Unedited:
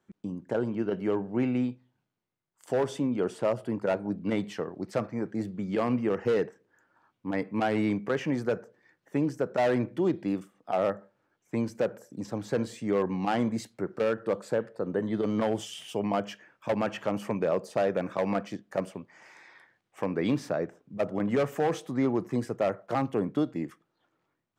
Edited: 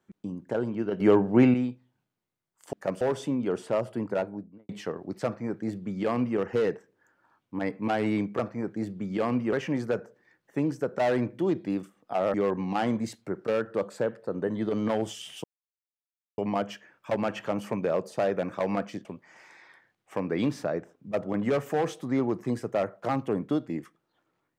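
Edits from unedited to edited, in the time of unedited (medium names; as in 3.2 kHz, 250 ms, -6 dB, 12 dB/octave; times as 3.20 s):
1.00–1.54 s: gain +8.5 dB
3.78–4.41 s: studio fade out
4.97–6.11 s: copy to 8.11 s
10.92–12.86 s: delete
15.96 s: insert silence 0.94 s
18.63–18.91 s: move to 2.73 s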